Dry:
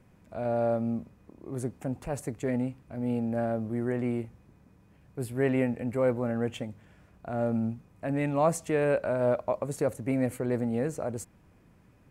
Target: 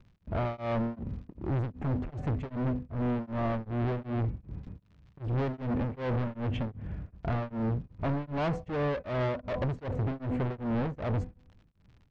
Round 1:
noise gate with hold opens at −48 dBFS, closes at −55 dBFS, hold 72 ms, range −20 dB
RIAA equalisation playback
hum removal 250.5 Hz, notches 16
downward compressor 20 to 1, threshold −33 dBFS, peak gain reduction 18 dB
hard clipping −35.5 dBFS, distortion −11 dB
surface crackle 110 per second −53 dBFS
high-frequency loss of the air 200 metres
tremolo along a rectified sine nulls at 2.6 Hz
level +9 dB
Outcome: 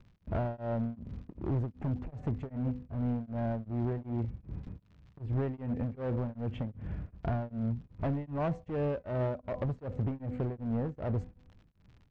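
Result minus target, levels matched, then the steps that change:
downward compressor: peak gain reduction +11 dB
change: downward compressor 20 to 1, threshold −21.5 dBFS, peak gain reduction 7.5 dB

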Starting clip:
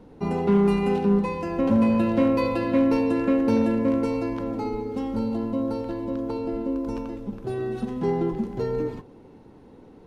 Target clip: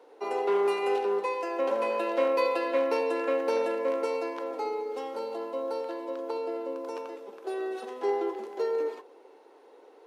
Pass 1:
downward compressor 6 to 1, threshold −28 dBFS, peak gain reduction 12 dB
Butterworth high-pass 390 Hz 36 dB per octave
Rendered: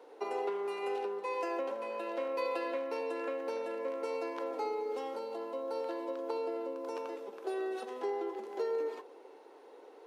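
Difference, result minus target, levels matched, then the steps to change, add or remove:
downward compressor: peak gain reduction +12 dB
remove: downward compressor 6 to 1, threshold −28 dBFS, peak gain reduction 12 dB

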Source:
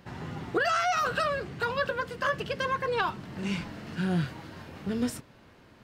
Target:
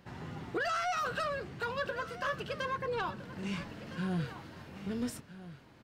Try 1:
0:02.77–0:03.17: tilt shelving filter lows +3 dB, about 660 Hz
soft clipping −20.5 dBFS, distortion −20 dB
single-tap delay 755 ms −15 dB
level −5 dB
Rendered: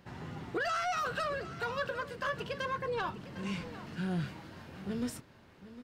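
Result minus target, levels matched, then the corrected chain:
echo 556 ms early
0:02.77–0:03.17: tilt shelving filter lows +3 dB, about 660 Hz
soft clipping −20.5 dBFS, distortion −20 dB
single-tap delay 1,311 ms −15 dB
level −5 dB

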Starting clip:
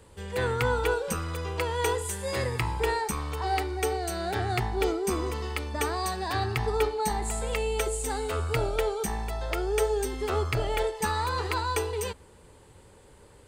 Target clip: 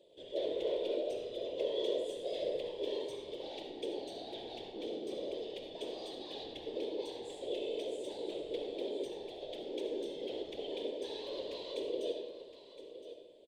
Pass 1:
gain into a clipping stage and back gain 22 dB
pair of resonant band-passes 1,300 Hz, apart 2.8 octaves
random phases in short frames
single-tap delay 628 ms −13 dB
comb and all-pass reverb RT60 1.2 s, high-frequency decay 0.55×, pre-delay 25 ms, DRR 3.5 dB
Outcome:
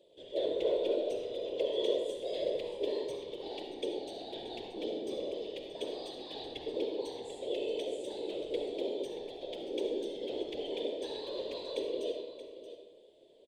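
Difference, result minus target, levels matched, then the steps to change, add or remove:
echo 388 ms early; gain into a clipping stage and back: distortion −8 dB
change: gain into a clipping stage and back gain 28.5 dB
change: single-tap delay 1,016 ms −13 dB

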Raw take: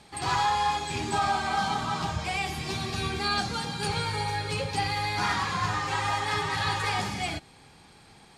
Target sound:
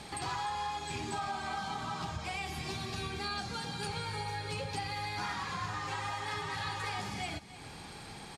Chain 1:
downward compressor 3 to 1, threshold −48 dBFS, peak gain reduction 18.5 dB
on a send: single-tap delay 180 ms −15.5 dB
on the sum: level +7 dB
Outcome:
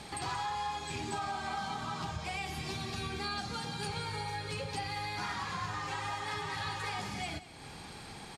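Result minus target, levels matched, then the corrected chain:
echo 118 ms early
downward compressor 3 to 1, threshold −48 dBFS, peak gain reduction 18.5 dB
on a send: single-tap delay 298 ms −15.5 dB
on the sum: level +7 dB

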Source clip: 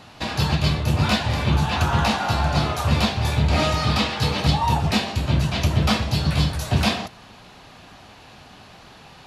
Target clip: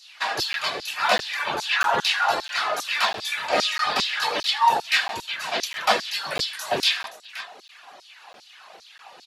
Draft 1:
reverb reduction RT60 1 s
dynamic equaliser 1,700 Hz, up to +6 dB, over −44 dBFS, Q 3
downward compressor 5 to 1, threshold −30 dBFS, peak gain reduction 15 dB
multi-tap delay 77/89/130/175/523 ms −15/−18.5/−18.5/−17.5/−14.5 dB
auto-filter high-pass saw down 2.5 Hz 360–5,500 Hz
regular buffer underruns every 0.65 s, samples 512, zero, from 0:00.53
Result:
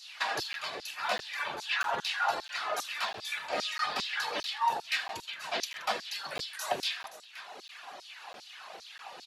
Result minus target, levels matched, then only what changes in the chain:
downward compressor: peak gain reduction +15 dB
remove: downward compressor 5 to 1, threshold −30 dBFS, peak gain reduction 15 dB

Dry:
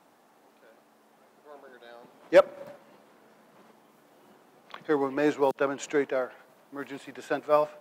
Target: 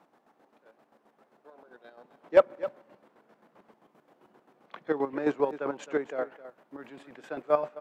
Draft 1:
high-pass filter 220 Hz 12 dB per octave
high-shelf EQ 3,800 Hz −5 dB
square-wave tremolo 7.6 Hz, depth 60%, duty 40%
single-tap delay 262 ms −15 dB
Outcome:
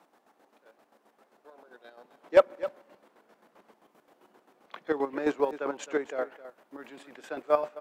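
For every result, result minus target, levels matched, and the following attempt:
8,000 Hz band +6.5 dB; 125 Hz band −5.5 dB
high-pass filter 220 Hz 12 dB per octave
high-shelf EQ 3,800 Hz −13.5 dB
square-wave tremolo 7.6 Hz, depth 60%, duty 40%
single-tap delay 262 ms −15 dB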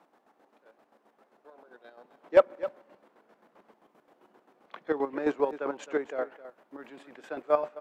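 125 Hz band −5.0 dB
high-pass filter 100 Hz 12 dB per octave
high-shelf EQ 3,800 Hz −13.5 dB
square-wave tremolo 7.6 Hz, depth 60%, duty 40%
single-tap delay 262 ms −15 dB

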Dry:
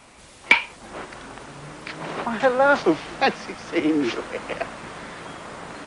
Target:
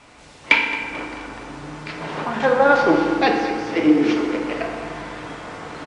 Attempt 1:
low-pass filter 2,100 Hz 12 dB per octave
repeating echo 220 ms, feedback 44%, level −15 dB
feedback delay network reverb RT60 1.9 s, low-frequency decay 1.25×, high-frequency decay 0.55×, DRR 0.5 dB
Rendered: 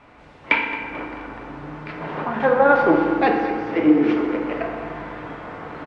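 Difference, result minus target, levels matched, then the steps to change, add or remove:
8,000 Hz band −17.5 dB
change: low-pass filter 6,800 Hz 12 dB per octave

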